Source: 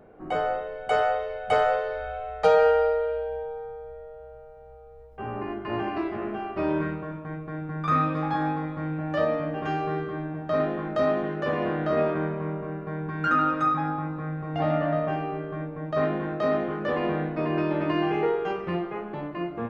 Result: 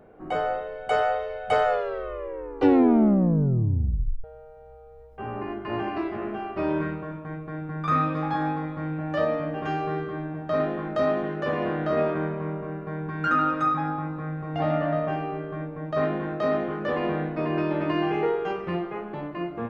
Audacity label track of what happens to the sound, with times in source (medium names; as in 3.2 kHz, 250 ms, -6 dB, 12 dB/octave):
1.650000	1.650000	tape stop 2.59 s